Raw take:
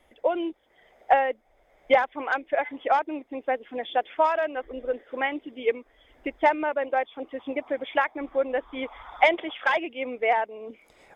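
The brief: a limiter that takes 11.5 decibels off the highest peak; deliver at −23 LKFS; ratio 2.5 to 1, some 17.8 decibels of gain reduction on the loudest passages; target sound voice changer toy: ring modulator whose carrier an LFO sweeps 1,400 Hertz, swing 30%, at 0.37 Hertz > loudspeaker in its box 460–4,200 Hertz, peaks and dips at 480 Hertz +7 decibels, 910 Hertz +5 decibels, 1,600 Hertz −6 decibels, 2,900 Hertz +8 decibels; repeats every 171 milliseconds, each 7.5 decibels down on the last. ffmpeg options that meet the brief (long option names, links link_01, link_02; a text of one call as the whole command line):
ffmpeg -i in.wav -af "acompressor=threshold=-42dB:ratio=2.5,alimiter=level_in=9.5dB:limit=-24dB:level=0:latency=1,volume=-9.5dB,aecho=1:1:171|342|513|684|855:0.422|0.177|0.0744|0.0312|0.0131,aeval=exprs='val(0)*sin(2*PI*1400*n/s+1400*0.3/0.37*sin(2*PI*0.37*n/s))':channel_layout=same,highpass=460,equalizer=frequency=480:width_type=q:width=4:gain=7,equalizer=frequency=910:width_type=q:width=4:gain=5,equalizer=frequency=1600:width_type=q:width=4:gain=-6,equalizer=frequency=2900:width_type=q:width=4:gain=8,lowpass=frequency=4200:width=0.5412,lowpass=frequency=4200:width=1.3066,volume=21dB" out.wav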